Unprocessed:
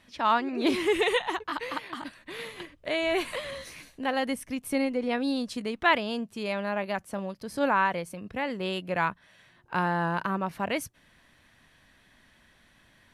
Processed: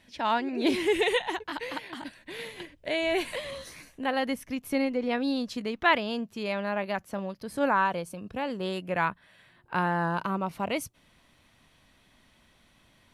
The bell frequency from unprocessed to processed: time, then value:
bell -11 dB 0.28 oct
3.37 s 1200 Hz
4.29 s 9000 Hz
7.37 s 9000 Hz
7.85 s 2000 Hz
8.57 s 2000 Hz
9.05 s 6100 Hz
9.81 s 6100 Hz
10.22 s 1700 Hz

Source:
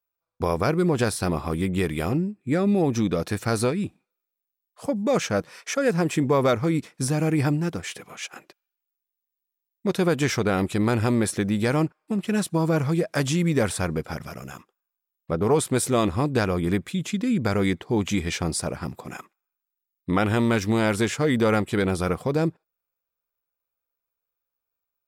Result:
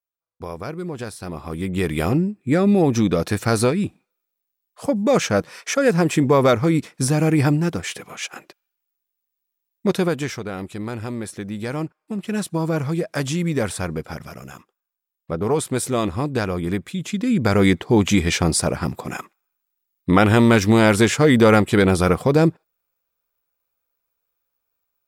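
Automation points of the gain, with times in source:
1.21 s -8 dB
1.98 s +5 dB
9.89 s +5 dB
10.42 s -7 dB
11.3 s -7 dB
12.43 s 0 dB
16.97 s 0 dB
17.66 s +7.5 dB

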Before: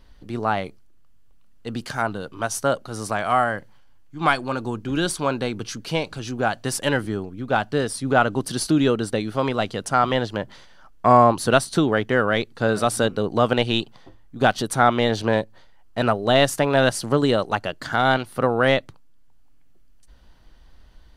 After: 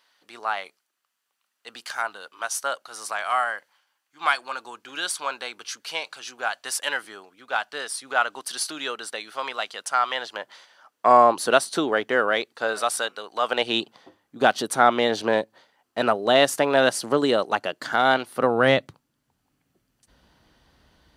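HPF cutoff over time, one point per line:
10.14 s 1000 Hz
11.19 s 390 Hz
12.25 s 390 Hz
13.31 s 1200 Hz
13.78 s 280 Hz
18.34 s 280 Hz
18.74 s 100 Hz

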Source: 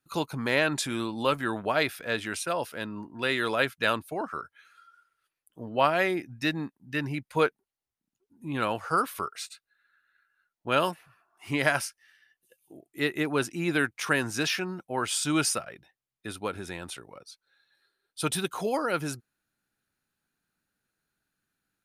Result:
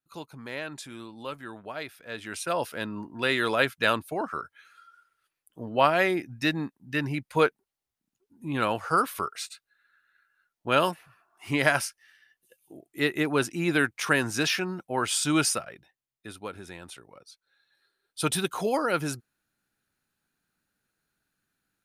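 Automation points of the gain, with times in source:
2.01 s -11 dB
2.55 s +2 dB
15.38 s +2 dB
16.38 s -5 dB
16.94 s -5 dB
18.2 s +2 dB

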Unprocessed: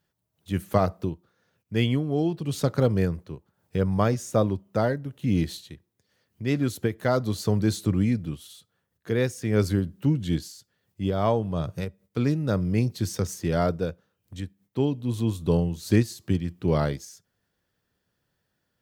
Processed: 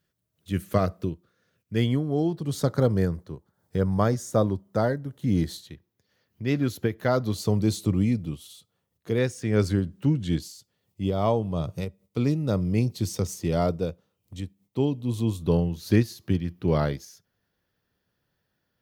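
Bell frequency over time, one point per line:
bell -10.5 dB 0.39 oct
850 Hz
from 1.78 s 2600 Hz
from 5.67 s 8500 Hz
from 7.34 s 1600 Hz
from 9.18 s 13000 Hz
from 10.39 s 1600 Hz
from 15.43 s 7900 Hz

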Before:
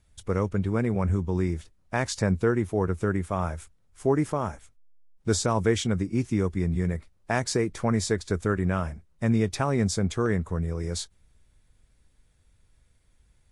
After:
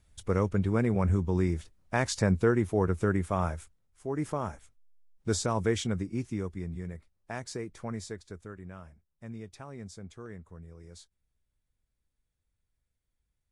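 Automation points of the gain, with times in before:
3.47 s -1 dB
4.07 s -12.5 dB
4.26 s -4.5 dB
5.86 s -4.5 dB
6.83 s -12 dB
7.94 s -12 dB
8.52 s -19 dB

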